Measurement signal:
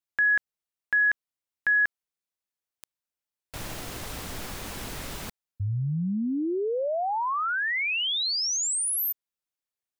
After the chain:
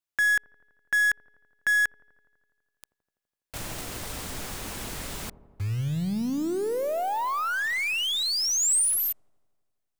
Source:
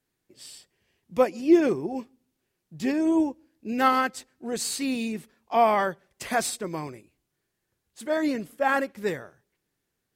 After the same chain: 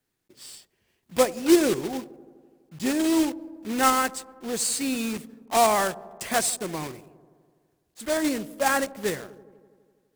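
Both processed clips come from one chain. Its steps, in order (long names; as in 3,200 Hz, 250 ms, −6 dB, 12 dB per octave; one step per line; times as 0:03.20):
one scale factor per block 3 bits
dynamic equaliser 8,400 Hz, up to +6 dB, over −46 dBFS, Q 1.5
delay with a low-pass on its return 83 ms, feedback 74%, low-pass 720 Hz, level −17 dB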